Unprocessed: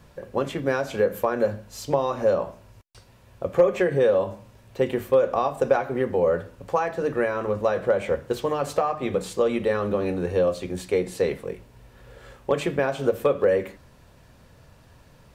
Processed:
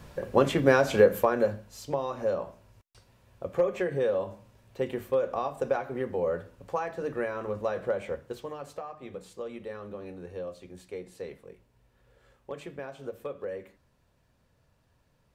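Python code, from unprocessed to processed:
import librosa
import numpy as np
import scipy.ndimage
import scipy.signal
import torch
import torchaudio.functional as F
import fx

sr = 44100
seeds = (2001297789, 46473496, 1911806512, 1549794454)

y = fx.gain(x, sr, db=fx.line((0.98, 3.5), (1.79, -7.5), (7.89, -7.5), (8.77, -16.0)))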